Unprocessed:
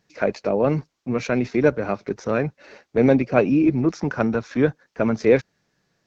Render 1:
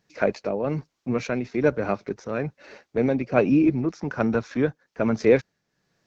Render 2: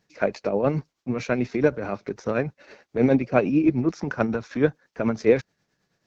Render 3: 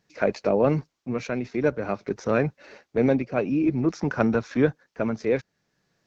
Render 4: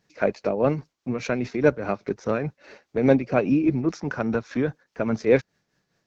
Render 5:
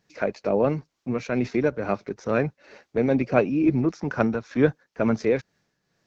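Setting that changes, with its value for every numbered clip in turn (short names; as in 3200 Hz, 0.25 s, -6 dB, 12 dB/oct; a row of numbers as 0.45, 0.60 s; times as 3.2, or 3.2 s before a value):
tremolo, rate: 1.2, 9.3, 0.52, 4.9, 2.2 Hz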